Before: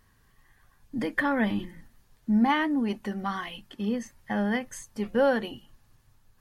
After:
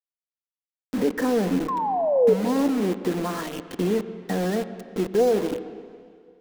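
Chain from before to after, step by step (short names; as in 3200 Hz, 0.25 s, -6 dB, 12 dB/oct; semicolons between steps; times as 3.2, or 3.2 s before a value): treble ducked by the level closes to 880 Hz, closed at -20.5 dBFS; LPF 1400 Hz 6 dB/oct; bell 88 Hz -8 dB 0.46 oct; in parallel at -1 dB: limiter -24 dBFS, peak gain reduction 9.5 dB; on the sum: compressor 2:1, threshold -45 dBFS, peak gain reduction 15.5 dB; short-mantissa float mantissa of 8-bit; formant-preserving pitch shift -2 st; bit-crush 7-bit; painted sound fall, 1.68–2.34, 420–1100 Hz -34 dBFS; small resonant body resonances 310/450 Hz, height 11 dB, ringing for 25 ms; on a send at -12 dB: reverb RT60 2.1 s, pre-delay 84 ms; on the sum: gain +7 dB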